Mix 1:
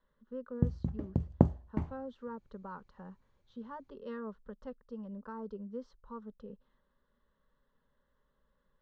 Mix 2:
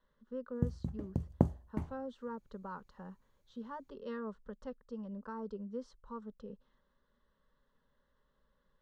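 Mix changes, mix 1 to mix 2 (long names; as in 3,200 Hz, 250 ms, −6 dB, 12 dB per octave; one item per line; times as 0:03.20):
background −4.0 dB
master: remove high-frequency loss of the air 120 metres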